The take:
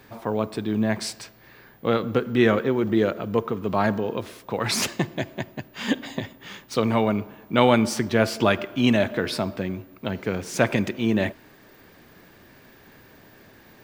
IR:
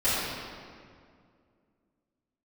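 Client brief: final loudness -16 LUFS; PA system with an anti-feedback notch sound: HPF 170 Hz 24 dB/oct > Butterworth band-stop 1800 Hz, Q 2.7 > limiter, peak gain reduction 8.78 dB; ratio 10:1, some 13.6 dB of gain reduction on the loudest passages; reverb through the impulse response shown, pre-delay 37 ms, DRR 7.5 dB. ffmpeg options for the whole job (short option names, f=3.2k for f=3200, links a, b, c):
-filter_complex "[0:a]acompressor=threshold=-27dB:ratio=10,asplit=2[a][b];[1:a]atrim=start_sample=2205,adelay=37[c];[b][c]afir=irnorm=-1:irlink=0,volume=-22dB[d];[a][d]amix=inputs=2:normalize=0,highpass=f=170:w=0.5412,highpass=f=170:w=1.3066,asuperstop=centerf=1800:order=8:qfactor=2.7,volume=19.5dB,alimiter=limit=-5.5dB:level=0:latency=1"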